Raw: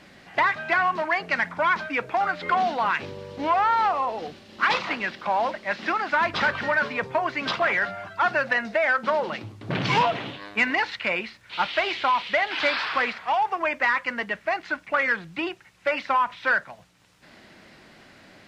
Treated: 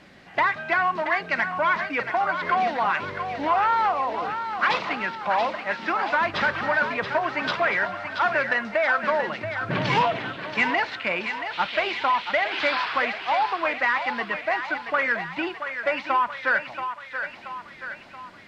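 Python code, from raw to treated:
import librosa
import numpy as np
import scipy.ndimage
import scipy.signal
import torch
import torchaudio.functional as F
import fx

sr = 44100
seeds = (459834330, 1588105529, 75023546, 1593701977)

p1 = fx.high_shelf(x, sr, hz=5800.0, db=-7.0)
y = p1 + fx.echo_thinned(p1, sr, ms=679, feedback_pct=59, hz=490.0, wet_db=-7.5, dry=0)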